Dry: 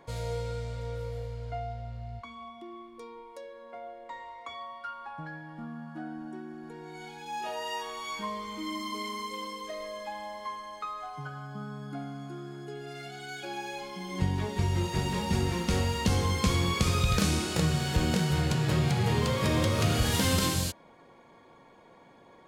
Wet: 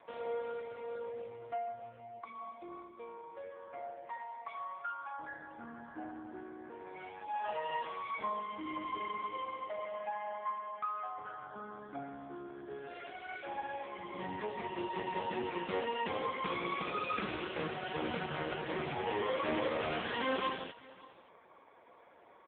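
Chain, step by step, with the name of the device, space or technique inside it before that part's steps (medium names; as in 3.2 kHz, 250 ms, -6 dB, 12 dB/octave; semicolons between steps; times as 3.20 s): 18.14–19.21 s: high-pass 55 Hz 12 dB/octave; satellite phone (band-pass 390–3200 Hz; delay 577 ms -21 dB; trim +1 dB; AMR-NB 5.15 kbps 8 kHz)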